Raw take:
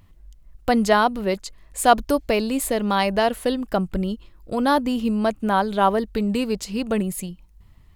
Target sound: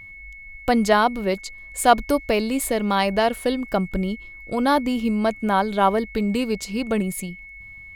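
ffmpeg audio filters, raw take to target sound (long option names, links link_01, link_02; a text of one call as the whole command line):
ffmpeg -i in.wav -af "aeval=exprs='val(0)+0.0112*sin(2*PI*2200*n/s)':channel_layout=same" out.wav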